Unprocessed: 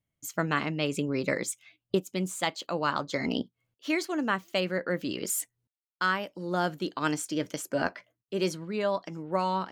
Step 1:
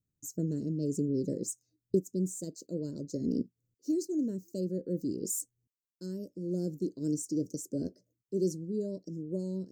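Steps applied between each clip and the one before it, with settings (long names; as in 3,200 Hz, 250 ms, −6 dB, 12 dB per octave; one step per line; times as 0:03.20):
inverse Chebyshev band-stop filter 760–3,500 Hz, stop band 40 dB
parametric band 11,000 Hz −12.5 dB 0.39 octaves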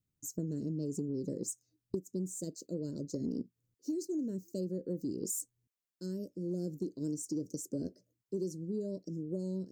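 downward compressor 10 to 1, threshold −32 dBFS, peak gain reduction 11 dB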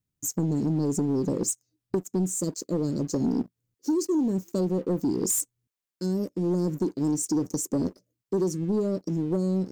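leveller curve on the samples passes 2
level +5 dB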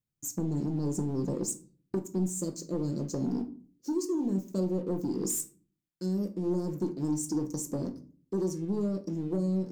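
rectangular room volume 310 cubic metres, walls furnished, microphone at 0.82 metres
level −6.5 dB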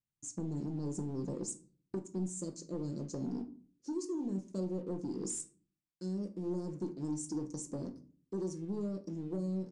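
downsampling to 22,050 Hz
level −7 dB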